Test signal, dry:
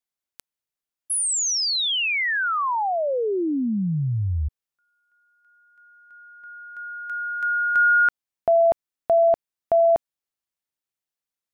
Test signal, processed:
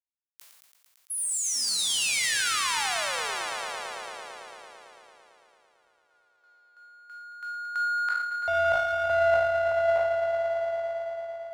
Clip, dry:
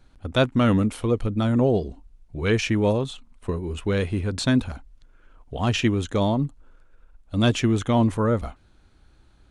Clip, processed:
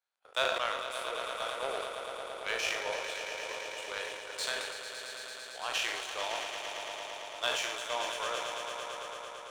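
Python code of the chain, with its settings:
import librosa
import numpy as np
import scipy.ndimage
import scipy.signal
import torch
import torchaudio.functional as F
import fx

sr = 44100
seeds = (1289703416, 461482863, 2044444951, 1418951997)

p1 = fx.spec_trails(x, sr, decay_s=0.47)
p2 = scipy.signal.sosfilt(scipy.signal.bessel(8, 840.0, 'highpass', norm='mag', fs=sr, output='sos'), p1)
p3 = p2 + fx.echo_swell(p2, sr, ms=112, loudest=5, wet_db=-8.5, dry=0)
p4 = fx.rev_schroeder(p3, sr, rt60_s=0.41, comb_ms=33, drr_db=9.5)
p5 = fx.power_curve(p4, sr, exponent=1.4)
p6 = fx.sustainer(p5, sr, db_per_s=36.0)
y = F.gain(torch.from_numpy(p6), -4.5).numpy()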